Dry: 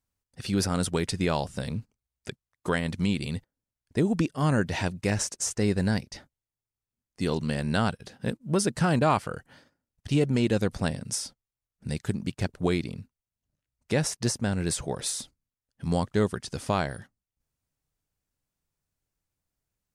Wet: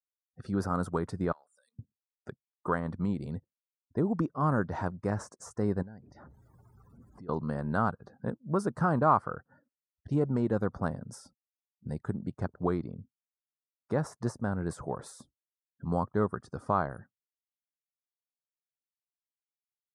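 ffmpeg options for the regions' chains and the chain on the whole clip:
-filter_complex "[0:a]asettb=1/sr,asplit=3[s0][s1][s2];[s0]atrim=end=1.324[s3];[s1]atrim=start=1.32:end=1.79,asetpts=PTS-STARTPTS,afade=t=in:d=0.004:c=qsin,afade=t=out:st=0.466:d=0.004:c=qsin,highpass=230,acompressor=threshold=0.0251:ratio=8:attack=3.2:release=140:knee=1:detection=peak,aderivative[s4];[s2]atrim=start=1.786[s5];[s3][s4]acrossfade=d=0.004:c1=hsin:c2=qsin[s6];[s6][s5]acrossfade=d=0.004:c1=qsin:c2=hsin,asettb=1/sr,asplit=3[s7][s8][s9];[s7]atrim=end=5.824[s10];[s8]atrim=start=5.82:end=7.29,asetpts=PTS-STARTPTS,afade=t=in:d=0.004:c=qsin,afade=t=out:st=1.466:d=0.004:c=qsin,aeval=exprs='val(0)+0.5*0.0119*sgn(val(0))':c=same,acompressor=threshold=0.00562:ratio=3:attack=3.2:release=140:knee=1:detection=peak[s11];[s9]atrim=start=7.286[s12];[s10][s11]acrossfade=d=0.004:c1=hsin:c2=qsin[s13];[s13][s12]acrossfade=d=0.004:c1=qsin:c2=hsin,afftdn=nr=33:nf=-50,highpass=63,highshelf=f=1800:t=q:w=3:g=-13.5,volume=0.596"

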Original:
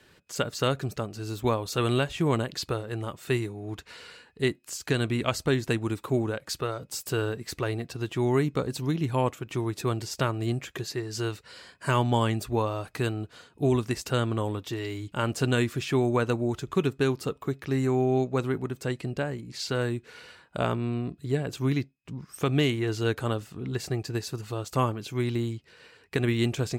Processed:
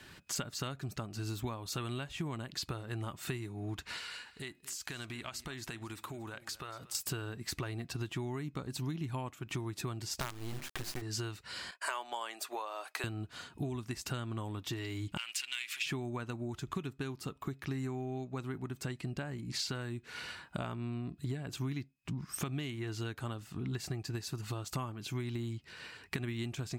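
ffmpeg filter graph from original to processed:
-filter_complex "[0:a]asettb=1/sr,asplit=3[s0][s1][s2];[s0]atrim=end=3.984[s3];[s1]atrim=start=3.98:end=6.95,asetpts=PTS-STARTPTS,afade=t=in:d=0.004:c=qsin,afade=t=out:st=2.966:d=0.004:c=qsin,equalizer=f=140:w=0.32:g=-10.5,acompressor=threshold=0.00631:ratio=5:attack=3.2:release=140:knee=1:detection=peak,aecho=1:1:233:0.126,atrim=end_sample=130977[s4];[s2]atrim=start=6.946[s5];[s3][s4]acrossfade=d=0.004:c1=hsin:c2=qsin[s6];[s6][s5]acrossfade=d=0.004:c1=qsin:c2=hsin,asettb=1/sr,asplit=3[s7][s8][s9];[s7]atrim=end=10.204[s10];[s8]atrim=start=10.2:end=11.02,asetpts=PTS-STARTPTS,afade=t=in:d=0.004:c=qsin,afade=t=out:st=0.816:d=0.004:c=qsin,bandreject=f=50:t=h:w=6,bandreject=f=100:t=h:w=6,bandreject=f=150:t=h:w=6,bandreject=f=200:t=h:w=6,bandreject=f=250:t=h:w=6,bandreject=f=300:t=h:w=6,bandreject=f=350:t=h:w=6,bandreject=f=400:t=h:w=6,acrusher=bits=4:dc=4:mix=0:aa=0.000001[s11];[s9]atrim=start=11.016[s12];[s10][s11]acrossfade=d=0.004:c1=hsin:c2=qsin[s13];[s13][s12]acrossfade=d=0.004:c1=qsin:c2=hsin,asettb=1/sr,asplit=3[s14][s15][s16];[s14]atrim=end=11.714[s17];[s15]atrim=start=11.71:end=13.04,asetpts=PTS-STARTPTS,afade=t=in:d=0.004:c=qsin,afade=t=out:st=1.326:d=0.004:c=qsin,agate=range=0.0224:threshold=0.00158:ratio=3:release=100:detection=peak,highpass=f=480:w=0.5412,highpass=f=480:w=1.3066[s18];[s16]atrim=start=13.036[s19];[s17][s18]acrossfade=d=0.004:c1=hsin:c2=qsin[s20];[s20][s19]acrossfade=d=0.004:c1=qsin:c2=hsin,asettb=1/sr,asplit=3[s21][s22][s23];[s21]atrim=end=15.174[s24];[s22]atrim=start=15.17:end=15.86,asetpts=PTS-STARTPTS,afade=t=in:d=0.004:c=qsin,afade=t=out:st=0.686:d=0.004:c=qsin,acompressor=threshold=0.0282:ratio=3:attack=3.2:release=140:knee=1:detection=peak,aeval=exprs='clip(val(0),-1,0.0266)':c=same,highpass=f=2500:t=q:w=2.8[s25];[s23]atrim=start=15.856[s26];[s24][s25]acrossfade=d=0.004:c1=hsin:c2=qsin[s27];[s27][s26]acrossfade=d=0.004:c1=qsin:c2=hsin,acompressor=threshold=0.0112:ratio=8,equalizer=f=480:w=2.5:g=-10,volume=1.78"

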